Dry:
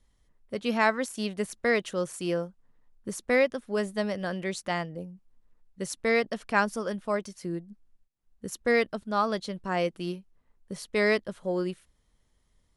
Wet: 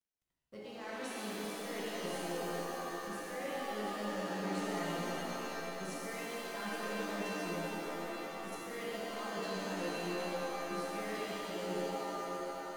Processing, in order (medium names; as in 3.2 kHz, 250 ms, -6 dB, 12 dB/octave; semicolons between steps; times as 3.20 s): reverse; compression 10:1, threshold -39 dBFS, peak gain reduction 21.5 dB; reverse; bit crusher 12-bit; on a send: repeats whose band climbs or falls 638 ms, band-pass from 420 Hz, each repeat 1.4 oct, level -3 dB; on the sum: crossover distortion -58 dBFS; pitch-shifted reverb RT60 3.4 s, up +7 st, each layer -2 dB, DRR -6.5 dB; trim -6 dB